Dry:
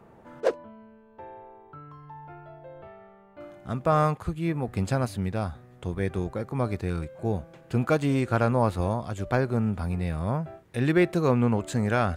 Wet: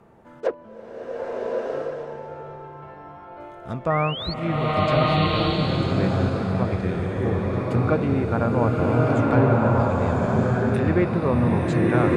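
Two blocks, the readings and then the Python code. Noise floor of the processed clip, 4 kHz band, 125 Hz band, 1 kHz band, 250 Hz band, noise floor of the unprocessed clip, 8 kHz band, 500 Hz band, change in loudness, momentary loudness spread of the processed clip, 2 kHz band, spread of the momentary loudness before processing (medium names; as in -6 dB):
-43 dBFS, +12.0 dB, +5.5 dB, +5.5 dB, +5.5 dB, -54 dBFS, no reading, +5.5 dB, +5.0 dB, 19 LU, +4.5 dB, 22 LU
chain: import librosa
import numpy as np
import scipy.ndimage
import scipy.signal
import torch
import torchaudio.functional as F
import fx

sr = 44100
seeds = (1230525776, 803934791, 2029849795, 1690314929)

y = fx.env_lowpass_down(x, sr, base_hz=1900.0, full_db=-20.0)
y = fx.spec_paint(y, sr, seeds[0], shape='rise', start_s=3.9, length_s=0.44, low_hz=1800.0, high_hz=4600.0, level_db=-33.0)
y = fx.rev_bloom(y, sr, seeds[1], attack_ms=1280, drr_db=-5.0)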